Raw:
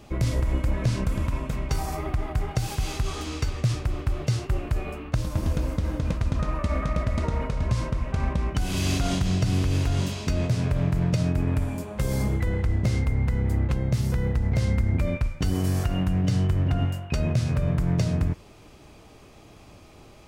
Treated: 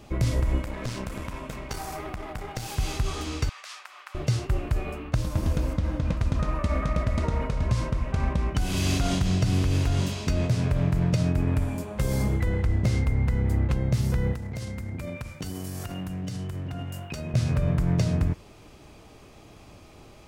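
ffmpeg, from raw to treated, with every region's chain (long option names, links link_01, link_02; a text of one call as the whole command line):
ffmpeg -i in.wav -filter_complex "[0:a]asettb=1/sr,asplit=3[link_01][link_02][link_03];[link_01]atrim=end=0.634[link_04];[link_02]atrim=start=0.63:end=2.76,asetpts=PTS-STARTPTS,afade=type=in:duration=0.004:curve=qsin,afade=type=out:start_time=2.126:duration=0.004:curve=qsin,lowshelf=frequency=180:gain=-11,aeval=exprs='clip(val(0),-1,0.0188)':channel_layout=same[link_05];[link_03]atrim=start=2.756[link_06];[link_04][link_05]acrossfade=duration=0.004:curve1=hsin:curve2=qsin[link_07];[link_07][link_06]acrossfade=duration=0.004:curve1=qsin:curve2=hsin,asettb=1/sr,asplit=3[link_08][link_09][link_10];[link_08]atrim=end=3.494[link_11];[link_09]atrim=start=3.49:end=4.15,asetpts=PTS-STARTPTS,afade=type=in:duration=0.004:curve=qsin,afade=type=out:start_time=0.656:duration=0.004:curve=qsin,highpass=frequency=980:width=0.5412,highpass=frequency=980:width=1.3066,highshelf=frequency=4400:gain=-6.5[link_12];[link_10]atrim=start=4.146[link_13];[link_11][link_12]acrossfade=duration=0.004:curve1=hsin:curve2=qsin[link_14];[link_14][link_13]acrossfade=duration=0.004:curve1=qsin:curve2=hsin,asettb=1/sr,asplit=3[link_15][link_16][link_17];[link_15]atrim=end=5.734[link_18];[link_16]atrim=start=5.73:end=6.17,asetpts=PTS-STARTPTS,afade=type=in:duration=0.004:curve=qsin,afade=type=out:start_time=0.436:duration=0.004:curve=qsin,highshelf=frequency=8300:gain=-11.5,bandreject=frequency=410:width=5.3[link_19];[link_17]atrim=start=6.166[link_20];[link_18][link_19]acrossfade=duration=0.004:curve1=hsin:curve2=qsin[link_21];[link_21][link_20]acrossfade=duration=0.004:curve1=qsin:curve2=hsin,asettb=1/sr,asplit=3[link_22][link_23][link_24];[link_22]atrim=end=14.334[link_25];[link_23]atrim=start=14.33:end=17.34,asetpts=PTS-STARTPTS,afade=type=in:duration=0.004:curve=qsin,afade=type=out:start_time=3.006:duration=0.004:curve=qsin,highpass=93,highshelf=frequency=5500:gain=9,acompressor=threshold=-30dB:ratio=6:attack=3.2:release=140:knee=1:detection=peak[link_26];[link_24]atrim=start=17.336[link_27];[link_25][link_26]acrossfade=duration=0.004:curve1=hsin:curve2=qsin[link_28];[link_28][link_27]acrossfade=duration=0.004:curve1=qsin:curve2=hsin" out.wav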